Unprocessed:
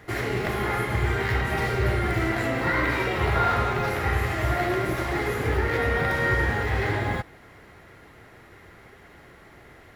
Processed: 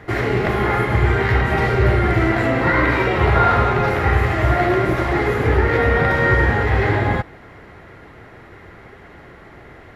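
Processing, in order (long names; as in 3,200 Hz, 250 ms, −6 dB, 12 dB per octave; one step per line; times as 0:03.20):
low-pass filter 2,300 Hz 6 dB per octave
level +8.5 dB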